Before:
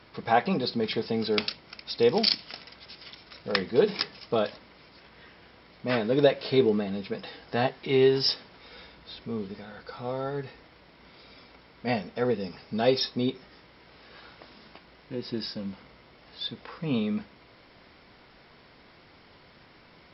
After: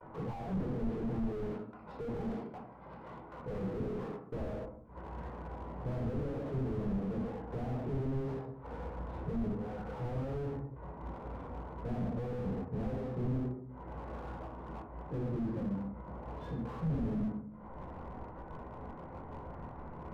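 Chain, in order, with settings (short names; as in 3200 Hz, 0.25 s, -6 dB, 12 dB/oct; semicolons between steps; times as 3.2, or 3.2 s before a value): ladder low-pass 1200 Hz, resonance 35%; upward compressor, threshold -46 dBFS; bell 69 Hz -5 dB 0.81 oct, from 4.4 s +10 dB; gate -54 dBFS, range -38 dB; notches 50/100/150/200/250/300/350/400/450 Hz; compressor, threshold -33 dBFS, peak gain reduction 12 dB; reverb RT60 0.60 s, pre-delay 11 ms, DRR -2.5 dB; slew limiter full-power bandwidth 3.8 Hz; gain +3 dB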